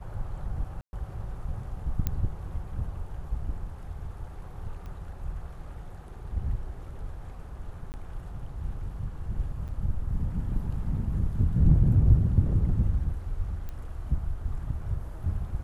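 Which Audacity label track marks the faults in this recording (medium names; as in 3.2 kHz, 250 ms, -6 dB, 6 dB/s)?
0.810000	0.930000	dropout 120 ms
2.070000	2.070000	pop -15 dBFS
4.860000	4.860000	pop -31 dBFS
7.920000	7.940000	dropout 19 ms
9.680000	9.690000	dropout 7.1 ms
13.690000	13.690000	pop -25 dBFS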